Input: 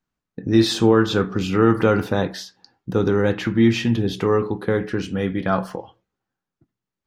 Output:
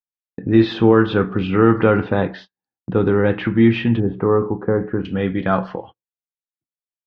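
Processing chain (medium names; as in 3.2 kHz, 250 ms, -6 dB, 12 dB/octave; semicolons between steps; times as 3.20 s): low-pass 3 kHz 24 dB/octave, from 4.00 s 1.4 kHz, from 5.05 s 3.6 kHz; gate -40 dBFS, range -35 dB; trim +2.5 dB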